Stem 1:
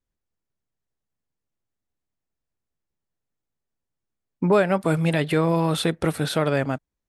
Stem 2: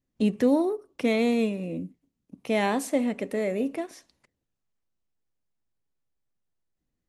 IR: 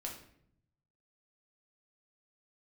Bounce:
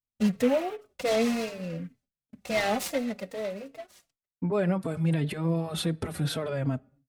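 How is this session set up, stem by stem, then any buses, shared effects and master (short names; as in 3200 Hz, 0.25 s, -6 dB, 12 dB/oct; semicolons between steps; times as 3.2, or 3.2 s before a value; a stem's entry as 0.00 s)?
-2.0 dB, 0.00 s, send -19.5 dB, HPF 45 Hz; low shelf 280 Hz +10.5 dB; limiter -16 dBFS, peak gain reduction 11.5 dB
+1.0 dB, 0.00 s, no send, bell 6300 Hz +13.5 dB 0.26 oct; comb 1.5 ms, depth 70%; noise-modulated delay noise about 1700 Hz, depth 0.045 ms; auto duck -17 dB, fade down 1.65 s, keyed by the first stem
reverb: on, RT60 0.65 s, pre-delay 5 ms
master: gate with hold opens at -49 dBFS; endless flanger 3.9 ms -2.7 Hz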